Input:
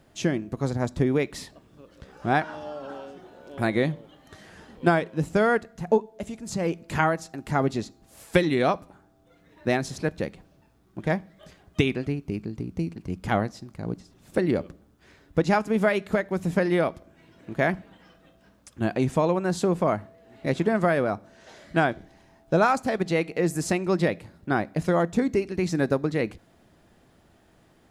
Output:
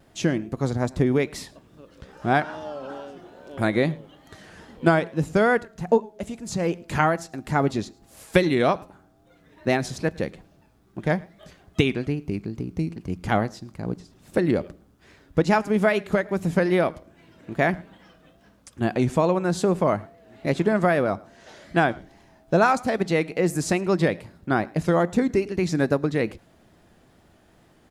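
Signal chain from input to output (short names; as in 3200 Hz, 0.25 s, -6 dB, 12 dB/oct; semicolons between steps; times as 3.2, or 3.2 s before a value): echo 0.108 s -24 dB; vibrato 2.4 Hz 60 cents; gain +2 dB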